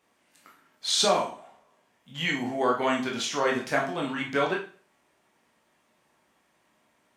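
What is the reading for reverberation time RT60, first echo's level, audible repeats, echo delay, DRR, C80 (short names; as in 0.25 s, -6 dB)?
0.40 s, none, none, none, -2.0 dB, 13.5 dB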